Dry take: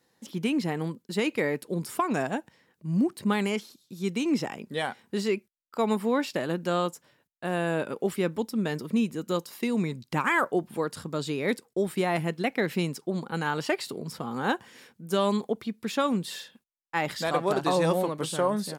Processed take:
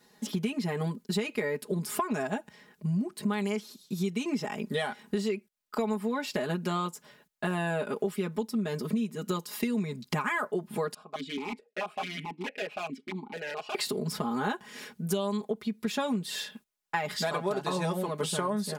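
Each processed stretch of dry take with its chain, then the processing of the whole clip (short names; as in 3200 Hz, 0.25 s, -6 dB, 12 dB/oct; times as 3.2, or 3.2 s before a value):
10.94–13.75 wrapped overs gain 22 dB + vowel sequencer 4.6 Hz
whole clip: comb 4.8 ms, depth 100%; compressor 6:1, threshold -33 dBFS; gain +5 dB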